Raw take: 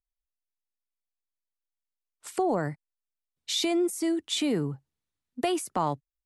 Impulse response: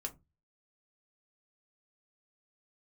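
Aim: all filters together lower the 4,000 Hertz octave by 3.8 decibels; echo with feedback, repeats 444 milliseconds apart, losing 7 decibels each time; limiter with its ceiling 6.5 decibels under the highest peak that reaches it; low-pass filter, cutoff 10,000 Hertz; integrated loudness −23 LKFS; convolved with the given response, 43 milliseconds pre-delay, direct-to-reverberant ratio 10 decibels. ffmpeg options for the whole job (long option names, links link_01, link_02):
-filter_complex "[0:a]lowpass=10000,equalizer=frequency=4000:width_type=o:gain=-4.5,alimiter=limit=-21.5dB:level=0:latency=1,aecho=1:1:444|888|1332|1776|2220:0.447|0.201|0.0905|0.0407|0.0183,asplit=2[link_01][link_02];[1:a]atrim=start_sample=2205,adelay=43[link_03];[link_02][link_03]afir=irnorm=-1:irlink=0,volume=-8.5dB[link_04];[link_01][link_04]amix=inputs=2:normalize=0,volume=8dB"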